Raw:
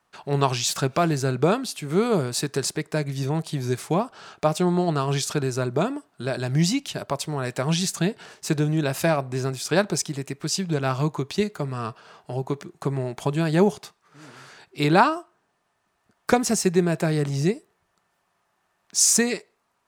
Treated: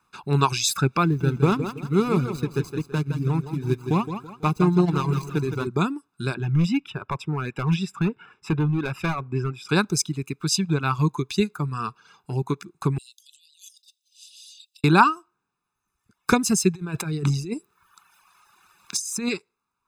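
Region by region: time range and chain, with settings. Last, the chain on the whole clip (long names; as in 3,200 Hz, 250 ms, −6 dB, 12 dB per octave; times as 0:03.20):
0:01.04–0:05.67: running median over 25 samples + repeating echo 164 ms, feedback 47%, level −5.5 dB
0:06.34–0:09.69: Savitzky-Golay smoothing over 25 samples + gain into a clipping stage and back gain 19.5 dB
0:12.98–0:14.84: Butterworth high-pass 2,900 Hz 96 dB per octave + compressor whose output falls as the input rises −53 dBFS
0:16.75–0:19.29: compressor whose output falls as the input rises −28 dBFS + one half of a high-frequency compander encoder only
whole clip: comb filter 0.8 ms, depth 81%; reverb reduction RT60 1.2 s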